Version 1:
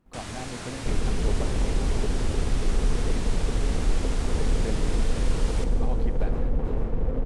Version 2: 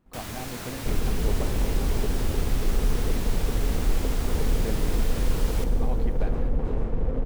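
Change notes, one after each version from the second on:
first sound: remove Butterworth low-pass 10,000 Hz 48 dB per octave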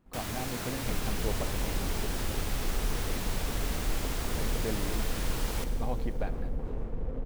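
second sound −8.5 dB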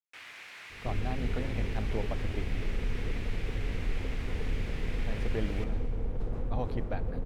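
speech: entry +0.70 s
first sound: add resonant band-pass 2,200 Hz, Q 2.4
master: add parametric band 100 Hz +7.5 dB 0.33 octaves

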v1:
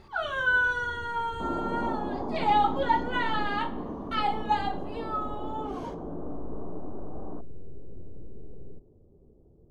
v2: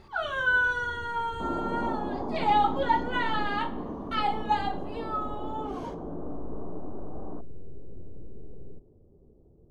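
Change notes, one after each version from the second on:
nothing changed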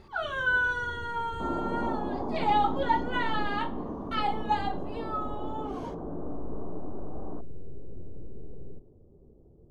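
speech: send −6.5 dB
first sound: send +8.5 dB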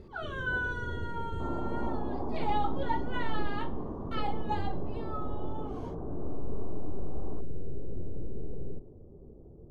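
speech −7.0 dB
first sound +5.5 dB
second sound −4.0 dB

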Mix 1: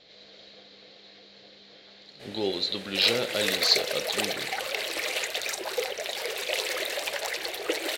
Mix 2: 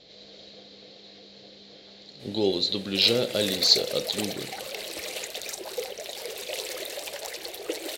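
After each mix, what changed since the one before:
speech +6.5 dB
master: add parametric band 1,600 Hz −10 dB 2.2 octaves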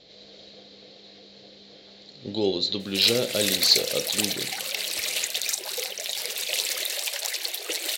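first sound: muted
second sound: add tilt shelving filter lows −9.5 dB, about 870 Hz

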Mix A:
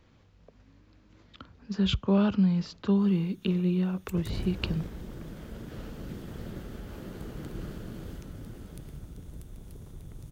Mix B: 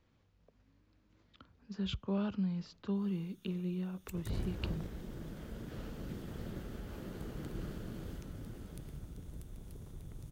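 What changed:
speech −11.0 dB
background −3.5 dB

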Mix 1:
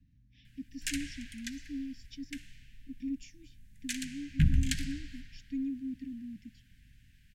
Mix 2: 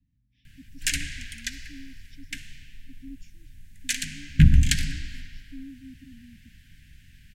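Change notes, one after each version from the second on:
speech −7.0 dB
background +10.0 dB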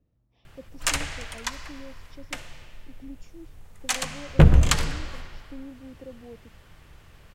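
master: remove Chebyshev band-stop filter 280–1,600 Hz, order 5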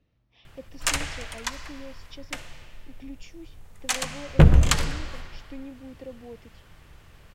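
speech: add parametric band 2,800 Hz +13.5 dB 2.6 octaves

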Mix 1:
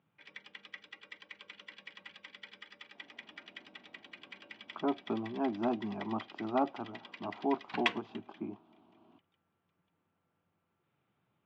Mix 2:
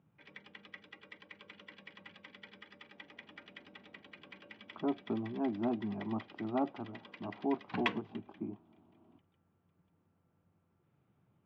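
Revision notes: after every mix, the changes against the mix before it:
speech −6.0 dB
master: add spectral tilt −3 dB per octave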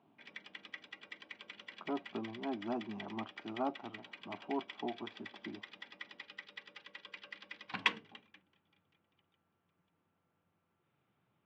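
speech: entry −2.95 s
master: add spectral tilt +3 dB per octave

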